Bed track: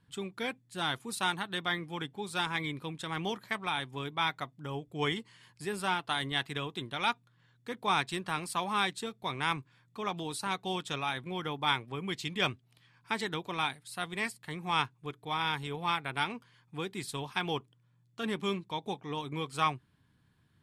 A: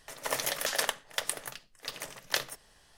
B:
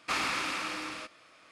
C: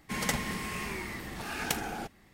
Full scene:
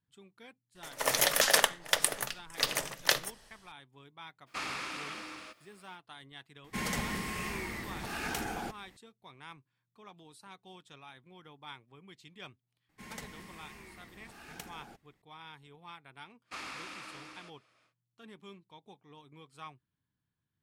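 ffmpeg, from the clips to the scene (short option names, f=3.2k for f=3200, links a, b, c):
-filter_complex "[2:a]asplit=2[a][b];[3:a]asplit=2[c][d];[0:a]volume=-18dB[e];[1:a]dynaudnorm=f=110:g=7:m=14dB[f];[a]acrusher=bits=10:mix=0:aa=0.000001[g];[c]alimiter=limit=-22.5dB:level=0:latency=1:release=21[h];[f]atrim=end=2.97,asetpts=PTS-STARTPTS,volume=-3.5dB,afade=t=in:d=0.004:c=hsin,afade=t=out:st=2.966:d=0.004:c=hsin,adelay=750[i];[g]atrim=end=1.51,asetpts=PTS-STARTPTS,volume=-7dB,afade=t=in:d=0.02,afade=t=out:st=1.49:d=0.02,adelay=4460[j];[h]atrim=end=2.33,asetpts=PTS-STARTPTS,volume=-1dB,afade=t=in:d=0.004:c=hsin,afade=t=out:st=2.326:d=0.004:c=hsin,adelay=6640[k];[d]atrim=end=2.33,asetpts=PTS-STARTPTS,volume=-15dB,afade=t=in:d=0.004:c=hsin,afade=t=out:st=2.326:d=0.004:c=hsin,adelay=12890[l];[b]atrim=end=1.51,asetpts=PTS-STARTPTS,volume=-12dB,afade=t=in:d=0.1,afade=t=out:st=1.41:d=0.1,adelay=16430[m];[e][i][j][k][l][m]amix=inputs=6:normalize=0"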